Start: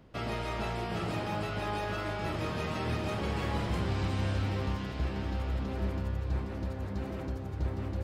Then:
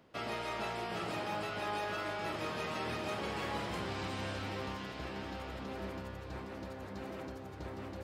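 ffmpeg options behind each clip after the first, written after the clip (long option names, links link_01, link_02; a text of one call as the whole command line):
ffmpeg -i in.wav -af "highpass=frequency=390:poles=1,volume=-1dB" out.wav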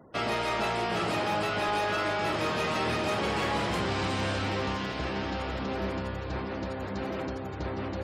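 ffmpeg -i in.wav -af "afftfilt=real='re*gte(hypot(re,im),0.000794)':imag='im*gte(hypot(re,im),0.000794)':win_size=1024:overlap=0.75,aeval=exprs='0.0562*sin(PI/2*1.58*val(0)/0.0562)':channel_layout=same,volume=2.5dB" out.wav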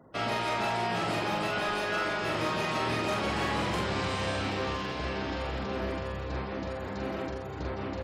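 ffmpeg -i in.wav -filter_complex "[0:a]asplit=2[link_01][link_02];[link_02]adelay=44,volume=-3.5dB[link_03];[link_01][link_03]amix=inputs=2:normalize=0,volume=-2.5dB" out.wav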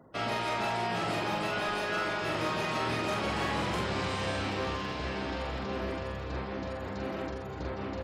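ffmpeg -i in.wav -af "areverse,acompressor=mode=upward:threshold=-35dB:ratio=2.5,areverse,aecho=1:1:885|1770|2655:0.168|0.052|0.0161,volume=-1.5dB" out.wav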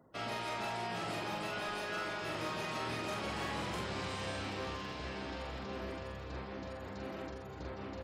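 ffmpeg -i in.wav -af "highshelf=frequency=5100:gain=5,volume=-7.5dB" out.wav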